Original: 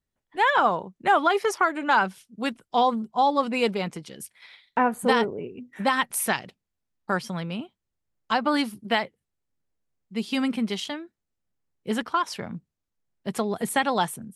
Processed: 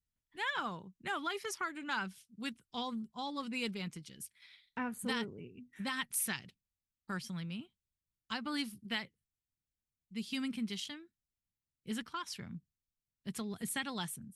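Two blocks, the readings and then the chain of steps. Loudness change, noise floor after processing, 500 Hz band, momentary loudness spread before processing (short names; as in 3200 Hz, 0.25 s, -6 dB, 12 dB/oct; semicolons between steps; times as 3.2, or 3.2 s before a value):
-14.5 dB, under -85 dBFS, -20.0 dB, 16 LU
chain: passive tone stack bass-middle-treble 6-0-2; gain +7.5 dB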